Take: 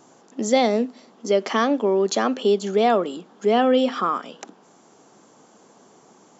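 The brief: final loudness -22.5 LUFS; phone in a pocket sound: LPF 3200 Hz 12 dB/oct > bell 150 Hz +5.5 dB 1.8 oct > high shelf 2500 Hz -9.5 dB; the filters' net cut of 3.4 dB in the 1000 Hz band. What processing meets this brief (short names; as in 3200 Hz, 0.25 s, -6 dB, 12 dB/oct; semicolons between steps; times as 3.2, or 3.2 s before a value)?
LPF 3200 Hz 12 dB/oct; bell 150 Hz +5.5 dB 1.8 oct; bell 1000 Hz -4 dB; high shelf 2500 Hz -9.5 dB; gain -1.5 dB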